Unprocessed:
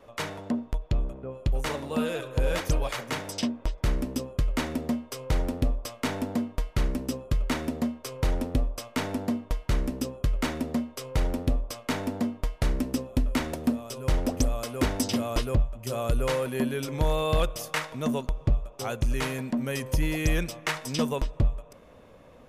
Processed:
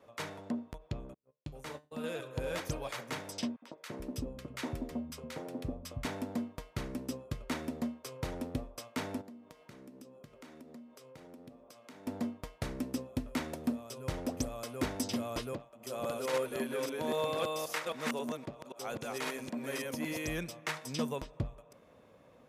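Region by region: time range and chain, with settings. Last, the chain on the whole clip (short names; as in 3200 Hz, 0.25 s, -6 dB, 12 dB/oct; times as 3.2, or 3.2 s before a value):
1.14–2.04 gate -33 dBFS, range -38 dB + resonator 150 Hz, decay 0.25 s
3.56–6.05 three bands offset in time highs, mids, lows 60/340 ms, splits 170/1100 Hz + mismatched tape noise reduction decoder only
9.21–12.07 HPF 210 Hz + compressor 4:1, threshold -47 dBFS + low shelf 270 Hz +7.5 dB
15.53–20.28 reverse delay 0.266 s, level -1 dB + HPF 250 Hz
whole clip: HPF 92 Hz 12 dB/oct; notch 2900 Hz, Q 29; gain -7.5 dB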